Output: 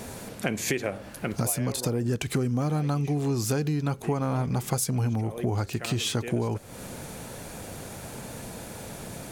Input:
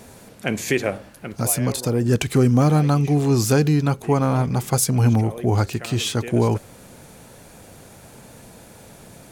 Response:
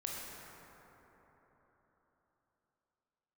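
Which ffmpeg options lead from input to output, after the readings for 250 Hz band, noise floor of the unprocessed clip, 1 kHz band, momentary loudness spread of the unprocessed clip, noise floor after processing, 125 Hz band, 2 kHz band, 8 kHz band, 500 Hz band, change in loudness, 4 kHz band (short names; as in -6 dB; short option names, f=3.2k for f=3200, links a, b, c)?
-8.0 dB, -46 dBFS, -8.0 dB, 9 LU, -42 dBFS, -8.0 dB, -6.0 dB, -5.5 dB, -8.0 dB, -9.0 dB, -4.5 dB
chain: -af "acompressor=threshold=-30dB:ratio=6,volume=5dB"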